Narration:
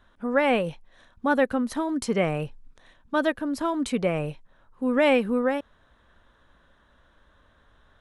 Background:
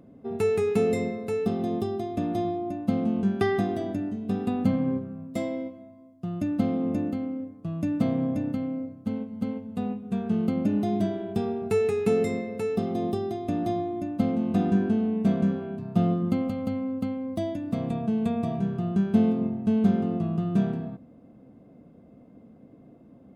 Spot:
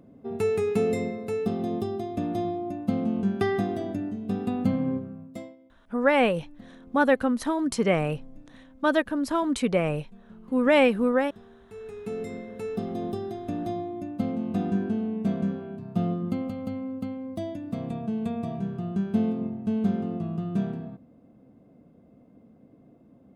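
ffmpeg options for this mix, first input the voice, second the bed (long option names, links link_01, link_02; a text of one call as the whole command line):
ffmpeg -i stem1.wav -i stem2.wav -filter_complex "[0:a]adelay=5700,volume=1dB[link_01];[1:a]volume=18.5dB,afade=type=out:start_time=5.06:duration=0.5:silence=0.0794328,afade=type=in:start_time=11.69:duration=1.15:silence=0.105925[link_02];[link_01][link_02]amix=inputs=2:normalize=0" out.wav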